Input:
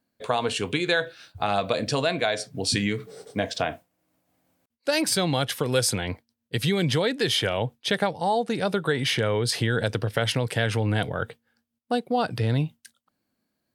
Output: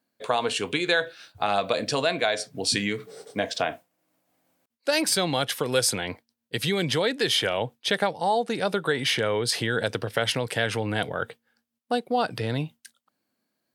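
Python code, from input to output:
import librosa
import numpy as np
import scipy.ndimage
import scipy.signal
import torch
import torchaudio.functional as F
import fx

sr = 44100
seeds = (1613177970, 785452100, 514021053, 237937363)

y = fx.highpass(x, sr, hz=270.0, slope=6)
y = F.gain(torch.from_numpy(y), 1.0).numpy()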